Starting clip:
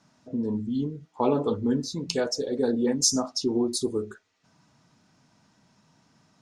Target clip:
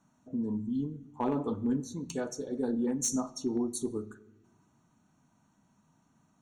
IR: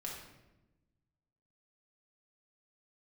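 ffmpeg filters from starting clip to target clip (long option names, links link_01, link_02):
-filter_complex "[0:a]equalizer=frequency=125:width_type=o:width=1:gain=-4,equalizer=frequency=500:width_type=o:width=1:gain=-8,equalizer=frequency=2000:width_type=o:width=1:gain=-8,equalizer=frequency=4000:width_type=o:width=1:gain=-11,asoftclip=type=hard:threshold=-20dB,asuperstop=centerf=5000:order=20:qfactor=5.3,asplit=2[link_01][link_02];[1:a]atrim=start_sample=2205,lowpass=7100[link_03];[link_02][link_03]afir=irnorm=-1:irlink=0,volume=-12dB[link_04];[link_01][link_04]amix=inputs=2:normalize=0,volume=-3dB"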